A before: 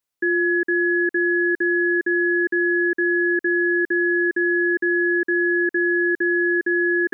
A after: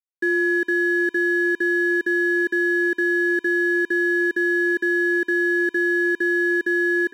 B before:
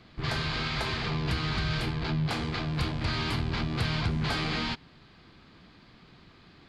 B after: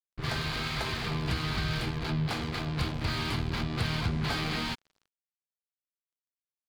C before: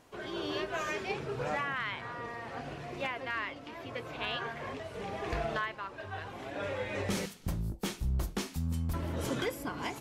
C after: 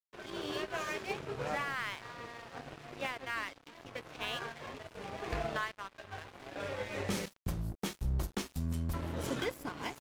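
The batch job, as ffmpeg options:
ffmpeg -i in.wav -filter_complex "[0:a]asplit=2[link_01][link_02];[link_02]adelay=355.7,volume=-23dB,highshelf=frequency=4000:gain=-8[link_03];[link_01][link_03]amix=inputs=2:normalize=0,aeval=exprs='sgn(val(0))*max(abs(val(0))-0.00668,0)':channel_layout=same" out.wav

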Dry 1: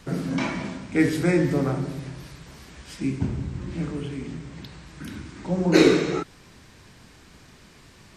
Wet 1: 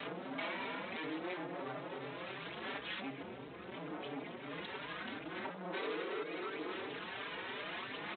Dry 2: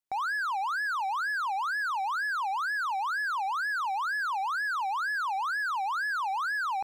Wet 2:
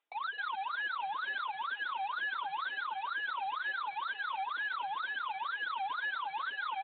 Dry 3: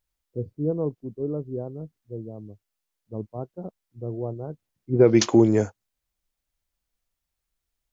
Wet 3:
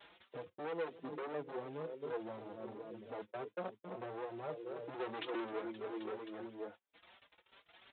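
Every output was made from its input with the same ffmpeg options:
ffmpeg -i in.wav -filter_complex "[0:a]asplit=2[link_01][link_02];[link_02]aecho=0:1:263|526|789|1052:0.158|0.065|0.0266|0.0109[link_03];[link_01][link_03]amix=inputs=2:normalize=0,acrusher=bits=5:mode=log:mix=0:aa=0.000001,acompressor=mode=upward:threshold=-26dB:ratio=2.5,aphaser=in_gain=1:out_gain=1:delay=2.2:decay=0.37:speed=0.74:type=sinusoidal,acompressor=threshold=-31dB:ratio=3,aresample=8000,asoftclip=type=hard:threshold=-36.5dB,aresample=44100,agate=range=-31dB:threshold=-48dB:ratio=16:detection=peak,highpass=380,asplit=2[link_04][link_05];[link_05]adelay=4.6,afreqshift=2.9[link_06];[link_04][link_06]amix=inputs=2:normalize=1,volume=4dB" out.wav

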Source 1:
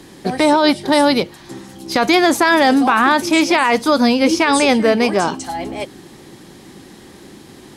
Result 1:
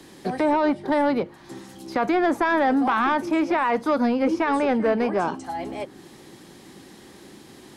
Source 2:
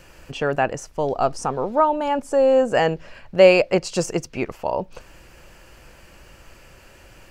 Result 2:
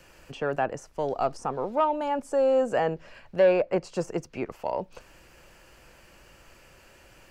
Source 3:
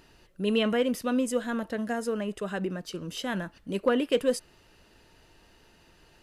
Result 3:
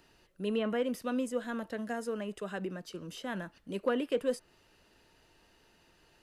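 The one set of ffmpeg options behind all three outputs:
ffmpeg -i in.wav -filter_complex "[0:a]lowshelf=frequency=150:gain=-5,acrossover=split=240|1400|1700[link_01][link_02][link_03][link_04];[link_04]acompressor=threshold=-40dB:ratio=10[link_05];[link_01][link_02][link_03][link_05]amix=inputs=4:normalize=0,asoftclip=type=tanh:threshold=-7.5dB,volume=-5dB" out.wav

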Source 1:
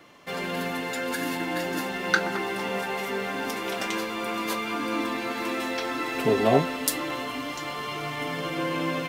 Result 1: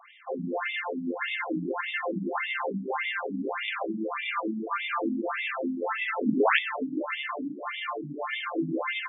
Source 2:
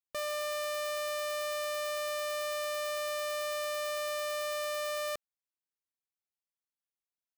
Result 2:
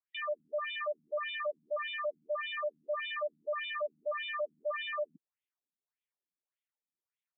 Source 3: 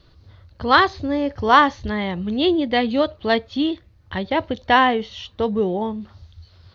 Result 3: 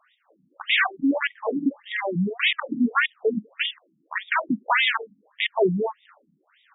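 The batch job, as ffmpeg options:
ffmpeg -i in.wav -af "aeval=exprs='0.891*(cos(1*acos(clip(val(0)/0.891,-1,1)))-cos(1*PI/2))+0.355*(cos(5*acos(clip(val(0)/0.891,-1,1)))-cos(5*PI/2))+0.0501*(cos(7*acos(clip(val(0)/0.891,-1,1)))-cos(7*PI/2))':channel_layout=same,aeval=exprs='(mod(2.11*val(0)+1,2)-1)/2.11':channel_layout=same,afftfilt=real='re*between(b*sr/1024,210*pow(2700/210,0.5+0.5*sin(2*PI*1.7*pts/sr))/1.41,210*pow(2700/210,0.5+0.5*sin(2*PI*1.7*pts/sr))*1.41)':imag='im*between(b*sr/1024,210*pow(2700/210,0.5+0.5*sin(2*PI*1.7*pts/sr))/1.41,210*pow(2700/210,0.5+0.5*sin(2*PI*1.7*pts/sr))*1.41)':win_size=1024:overlap=0.75,volume=-2.5dB" out.wav

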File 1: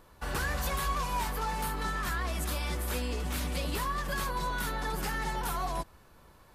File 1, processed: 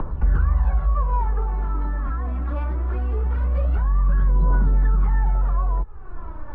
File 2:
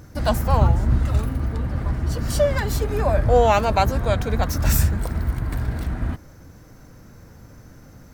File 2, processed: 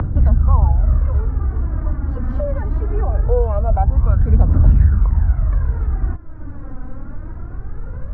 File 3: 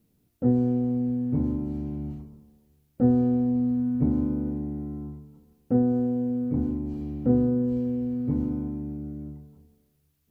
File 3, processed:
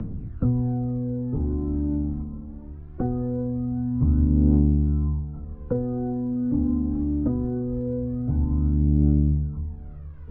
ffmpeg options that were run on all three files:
ffmpeg -i in.wav -filter_complex "[0:a]aemphasis=mode=reproduction:type=bsi,acompressor=mode=upward:threshold=-12dB:ratio=2.5,lowpass=frequency=1300:width_type=q:width=1.8,acrossover=split=95|200|820[link_01][link_02][link_03][link_04];[link_01]acompressor=threshold=-12dB:ratio=4[link_05];[link_02]acompressor=threshold=-21dB:ratio=4[link_06];[link_03]acompressor=threshold=-20dB:ratio=4[link_07];[link_04]acompressor=threshold=-35dB:ratio=4[link_08];[link_05][link_06][link_07][link_08]amix=inputs=4:normalize=0,aphaser=in_gain=1:out_gain=1:delay=4:decay=0.63:speed=0.22:type=triangular,volume=-6dB" out.wav

